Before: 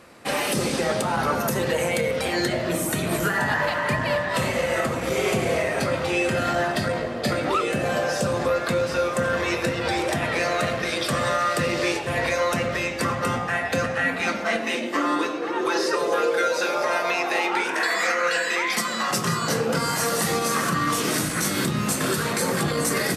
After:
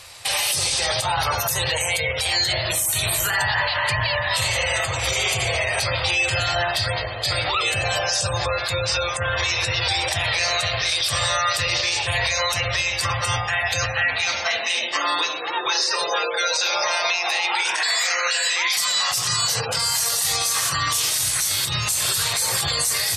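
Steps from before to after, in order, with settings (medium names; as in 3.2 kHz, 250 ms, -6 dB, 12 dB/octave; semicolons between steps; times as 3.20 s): spectral gate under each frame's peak -30 dB strong; FFT filter 110 Hz 0 dB, 210 Hz -29 dB, 840 Hz -4 dB, 1.4 kHz -8 dB, 3.7 kHz +8 dB; peak limiter -21 dBFS, peak gain reduction 15.5 dB; trim +8.5 dB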